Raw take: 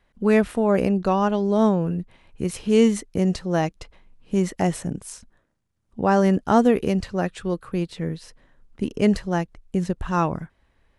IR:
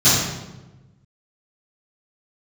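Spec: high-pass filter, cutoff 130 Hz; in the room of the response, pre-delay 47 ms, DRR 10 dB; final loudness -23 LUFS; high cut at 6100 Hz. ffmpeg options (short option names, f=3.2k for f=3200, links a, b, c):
-filter_complex "[0:a]highpass=130,lowpass=6.1k,asplit=2[a][b];[1:a]atrim=start_sample=2205,adelay=47[c];[b][c]afir=irnorm=-1:irlink=0,volume=-32dB[d];[a][d]amix=inputs=2:normalize=0,volume=-1dB"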